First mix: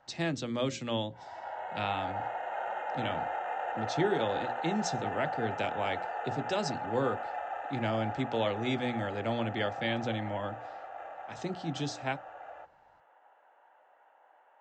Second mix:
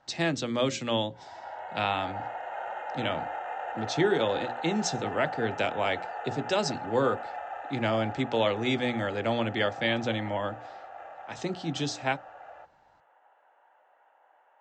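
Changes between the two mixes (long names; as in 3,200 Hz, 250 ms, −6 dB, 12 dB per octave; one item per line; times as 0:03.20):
speech +6.0 dB
master: add low-shelf EQ 260 Hz −5 dB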